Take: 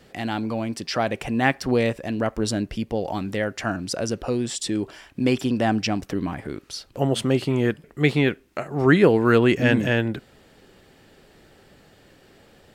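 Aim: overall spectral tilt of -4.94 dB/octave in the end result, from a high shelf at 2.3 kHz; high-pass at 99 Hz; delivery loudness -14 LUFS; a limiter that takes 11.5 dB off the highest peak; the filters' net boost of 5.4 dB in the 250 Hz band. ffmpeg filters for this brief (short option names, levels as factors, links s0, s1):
-af "highpass=99,equalizer=f=250:t=o:g=6.5,highshelf=f=2300:g=5.5,volume=2.99,alimiter=limit=0.75:level=0:latency=1"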